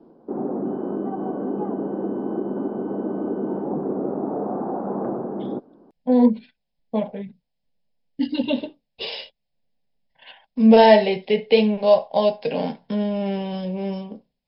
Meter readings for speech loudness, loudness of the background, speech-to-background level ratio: −20.0 LKFS, −27.5 LKFS, 7.5 dB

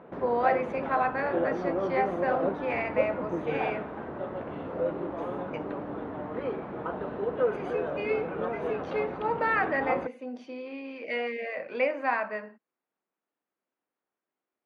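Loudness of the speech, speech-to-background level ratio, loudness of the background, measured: −31.0 LKFS, 2.0 dB, −33.0 LKFS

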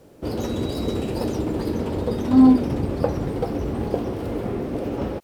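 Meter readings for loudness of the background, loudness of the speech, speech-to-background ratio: −26.5 LKFS, −16.5 LKFS, 10.0 dB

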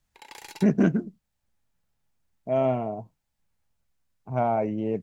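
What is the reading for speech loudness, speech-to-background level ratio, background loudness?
−26.0 LKFS, 19.0 dB, −45.0 LKFS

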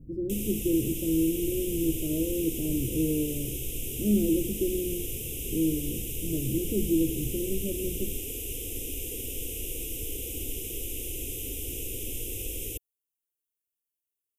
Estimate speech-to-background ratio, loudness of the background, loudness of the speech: 4.0 dB, −34.0 LKFS, −30.0 LKFS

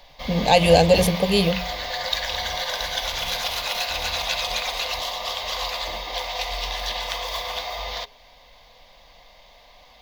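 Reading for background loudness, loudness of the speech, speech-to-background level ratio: −26.5 LKFS, −18.5 LKFS, 8.0 dB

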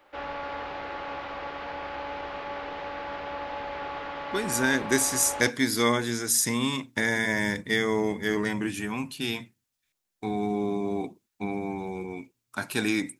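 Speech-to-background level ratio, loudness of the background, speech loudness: 8.5 dB, −35.5 LKFS, −27.0 LKFS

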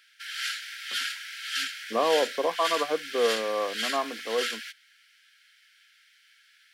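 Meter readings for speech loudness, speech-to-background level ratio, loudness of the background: −28.5 LKFS, 3.5 dB, −32.0 LKFS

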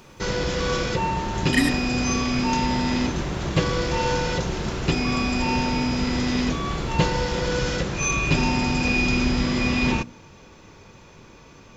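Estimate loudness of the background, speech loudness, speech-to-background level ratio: −23.5 LKFS, −26.0 LKFS, −2.5 dB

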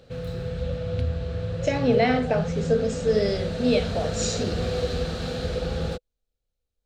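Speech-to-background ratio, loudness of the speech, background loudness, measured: 4.5 dB, −25.0 LKFS, −29.5 LKFS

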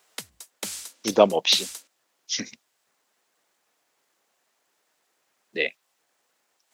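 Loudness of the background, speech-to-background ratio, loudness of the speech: −36.0 LKFS, 12.5 dB, −23.5 LKFS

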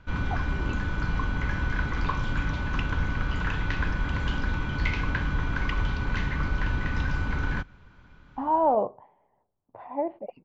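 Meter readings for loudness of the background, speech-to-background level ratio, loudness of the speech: −29.5 LKFS, 2.0 dB, −27.5 LKFS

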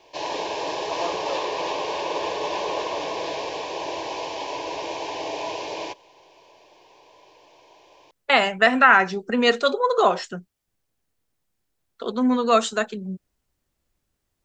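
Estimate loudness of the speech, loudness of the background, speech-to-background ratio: −19.5 LKFS, −28.5 LKFS, 9.0 dB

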